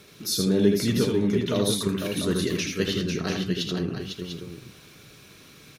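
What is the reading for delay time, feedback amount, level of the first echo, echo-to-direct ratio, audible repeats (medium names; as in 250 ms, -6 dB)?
79 ms, no regular repeats, -4.5 dB, -1.5 dB, 3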